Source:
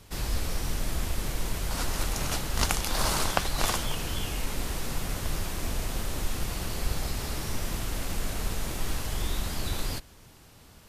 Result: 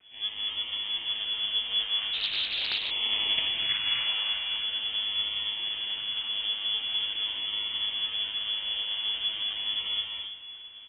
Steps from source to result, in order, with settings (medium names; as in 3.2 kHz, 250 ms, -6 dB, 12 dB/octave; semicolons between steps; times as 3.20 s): 3.67–4.37 s: peaking EQ 720 Hz +12 dB 0.99 oct; vocoder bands 32, saw 104 Hz; decimation with a swept rate 19×, swing 60% 0.43 Hz; full-wave rectifier; crackle 400 per s -51 dBFS; feedback delay 335 ms, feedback 48%, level -15 dB; gated-style reverb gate 290 ms rising, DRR -1 dB; frequency inversion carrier 3.4 kHz; 2.13–2.91 s: loudspeaker Doppler distortion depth 0.38 ms; trim +1 dB